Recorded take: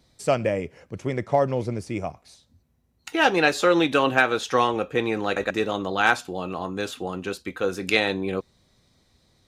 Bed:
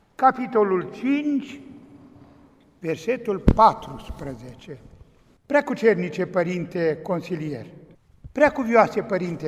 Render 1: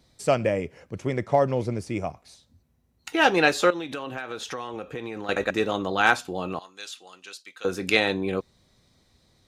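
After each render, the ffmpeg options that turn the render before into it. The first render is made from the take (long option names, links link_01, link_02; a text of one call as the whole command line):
ffmpeg -i in.wav -filter_complex "[0:a]asettb=1/sr,asplit=3[link_01][link_02][link_03];[link_01]atrim=end=3.704[link_04];[link_02]atrim=start=3.7:end=5.29,asetpts=PTS-STARTPTS,afade=type=in:duration=0.004:curve=qsin,afade=type=out:start_time=1.586:duration=0.004:curve=qsin,acompressor=threshold=-30dB:ratio=6:attack=3.2:release=140:knee=1:detection=peak[link_05];[link_03]atrim=start=5.286[link_06];[link_04][link_05]acrossfade=duration=0.004:curve1=hsin:curve2=qsin[link_07];[link_07][link_06]acrossfade=duration=0.004:curve1=qsin:curve2=hsin,asettb=1/sr,asplit=3[link_08][link_09][link_10];[link_08]atrim=end=6.594[link_11];[link_09]atrim=start=6.59:end=7.65,asetpts=PTS-STARTPTS,afade=type=in:duration=0.004:curve=qsin,afade=type=out:start_time=1.056:duration=0.004:curve=qsin,bandpass=frequency=5500:width_type=q:width=0.88[link_12];[link_10]atrim=start=7.646[link_13];[link_11][link_12]acrossfade=duration=0.004:curve1=hsin:curve2=qsin[link_14];[link_14][link_13]acrossfade=duration=0.004:curve1=qsin:curve2=hsin" out.wav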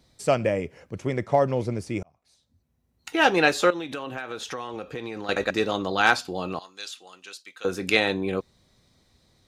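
ffmpeg -i in.wav -filter_complex "[0:a]asettb=1/sr,asplit=3[link_01][link_02][link_03];[link_01]atrim=end=4.694[link_04];[link_02]atrim=start=4.69:end=6.88,asetpts=PTS-STARTPTS,afade=type=in:duration=0.004:curve=qsin,afade=type=out:start_time=2.186:duration=0.004:curve=qsin,equalizer=frequency=4700:width_type=o:width=0.44:gain=9[link_05];[link_03]atrim=start=6.876[link_06];[link_04][link_05]acrossfade=duration=0.004:curve1=hsin:curve2=qsin[link_07];[link_07][link_06]acrossfade=duration=0.004:curve1=qsin:curve2=hsin,asplit=2[link_08][link_09];[link_08]atrim=end=2.03,asetpts=PTS-STARTPTS,afade=type=out:start_time=2.026:duration=0.004:curve=hsin[link_10];[link_09]atrim=start=2.03,asetpts=PTS-STARTPTS,afade=type=in:duration=1.17[link_11];[link_10][link_11]concat=n=2:v=0:a=1" out.wav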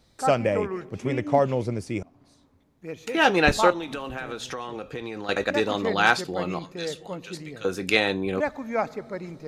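ffmpeg -i in.wav -i bed.wav -filter_complex "[1:a]volume=-10dB[link_01];[0:a][link_01]amix=inputs=2:normalize=0" out.wav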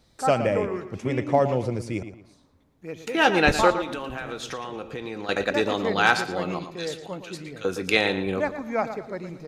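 ffmpeg -i in.wav -filter_complex "[0:a]asplit=2[link_01][link_02];[link_02]adelay=114,lowpass=frequency=4500:poles=1,volume=-10.5dB,asplit=2[link_03][link_04];[link_04]adelay=114,lowpass=frequency=4500:poles=1,volume=0.32,asplit=2[link_05][link_06];[link_06]adelay=114,lowpass=frequency=4500:poles=1,volume=0.32[link_07];[link_01][link_03][link_05][link_07]amix=inputs=4:normalize=0" out.wav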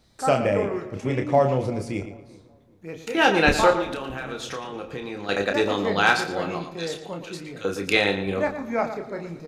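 ffmpeg -i in.wav -filter_complex "[0:a]asplit=2[link_01][link_02];[link_02]adelay=30,volume=-6dB[link_03];[link_01][link_03]amix=inputs=2:normalize=0,asplit=2[link_04][link_05];[link_05]adelay=386,lowpass=frequency=930:poles=1,volume=-20.5dB,asplit=2[link_06][link_07];[link_07]adelay=386,lowpass=frequency=930:poles=1,volume=0.36,asplit=2[link_08][link_09];[link_09]adelay=386,lowpass=frequency=930:poles=1,volume=0.36[link_10];[link_04][link_06][link_08][link_10]amix=inputs=4:normalize=0" out.wav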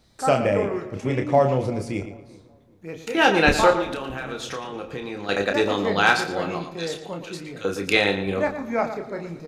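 ffmpeg -i in.wav -af "volume=1dB" out.wav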